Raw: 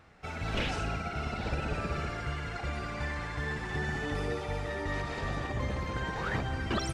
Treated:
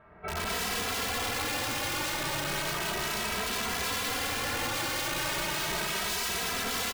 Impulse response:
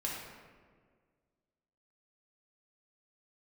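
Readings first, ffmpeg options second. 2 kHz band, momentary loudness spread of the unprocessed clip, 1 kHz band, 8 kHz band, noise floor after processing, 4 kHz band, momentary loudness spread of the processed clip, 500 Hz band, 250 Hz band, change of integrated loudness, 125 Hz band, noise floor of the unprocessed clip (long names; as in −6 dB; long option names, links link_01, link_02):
+4.5 dB, 4 LU, +3.5 dB, +17.5 dB, −35 dBFS, +11.0 dB, 1 LU, +0.5 dB, −2.0 dB, +4.5 dB, −7.5 dB, −39 dBFS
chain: -filter_complex "[0:a]asplit=2[link_01][link_02];[link_02]aecho=0:1:82|164|246|328:0.112|0.0527|0.0248|0.0116[link_03];[link_01][link_03]amix=inputs=2:normalize=0[link_04];[1:a]atrim=start_sample=2205[link_05];[link_04][link_05]afir=irnorm=-1:irlink=0,asplit=2[link_06][link_07];[link_07]asoftclip=type=hard:threshold=-27dB,volume=-5dB[link_08];[link_06][link_08]amix=inputs=2:normalize=0,lowshelf=frequency=240:gain=-8,acontrast=54,lowpass=1700,aemphasis=mode=reproduction:type=75fm,aeval=exprs='(mod(15.8*val(0)+1,2)-1)/15.8':channel_layout=same,asplit=2[link_09][link_10];[link_10]adelay=2.7,afreqshift=0.34[link_11];[link_09][link_11]amix=inputs=2:normalize=1"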